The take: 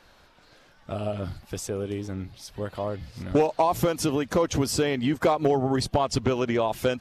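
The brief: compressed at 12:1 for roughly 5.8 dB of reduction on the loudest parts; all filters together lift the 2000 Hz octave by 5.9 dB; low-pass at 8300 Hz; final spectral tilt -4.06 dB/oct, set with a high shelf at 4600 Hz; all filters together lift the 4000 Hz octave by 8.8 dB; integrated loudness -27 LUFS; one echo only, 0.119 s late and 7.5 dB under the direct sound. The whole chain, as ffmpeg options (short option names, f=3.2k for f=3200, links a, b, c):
-af "lowpass=8.3k,equalizer=f=2k:t=o:g=4.5,equalizer=f=4k:t=o:g=8,highshelf=f=4.6k:g=4.5,acompressor=threshold=-22dB:ratio=12,aecho=1:1:119:0.422,volume=1dB"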